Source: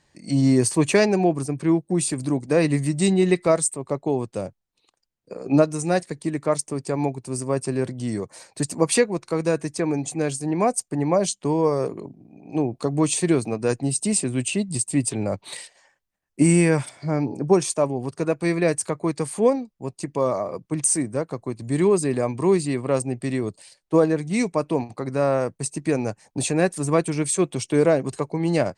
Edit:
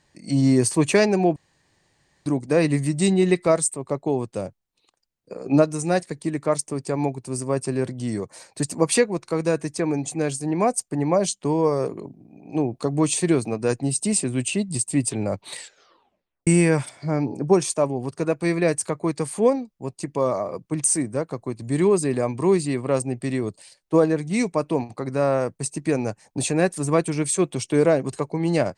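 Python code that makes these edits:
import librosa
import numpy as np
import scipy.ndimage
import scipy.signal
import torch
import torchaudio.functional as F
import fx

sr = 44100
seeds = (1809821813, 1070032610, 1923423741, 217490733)

y = fx.edit(x, sr, fx.room_tone_fill(start_s=1.36, length_s=0.9),
    fx.tape_stop(start_s=15.58, length_s=0.89), tone=tone)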